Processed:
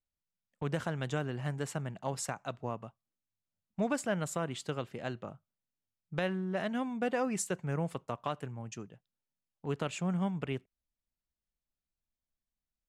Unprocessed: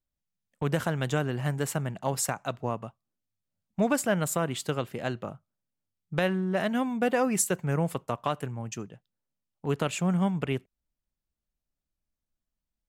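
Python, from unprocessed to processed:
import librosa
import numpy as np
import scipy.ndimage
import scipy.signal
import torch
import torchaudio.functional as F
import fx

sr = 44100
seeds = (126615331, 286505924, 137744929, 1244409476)

y = scipy.signal.sosfilt(scipy.signal.butter(2, 8100.0, 'lowpass', fs=sr, output='sos'), x)
y = F.gain(torch.from_numpy(y), -6.5).numpy()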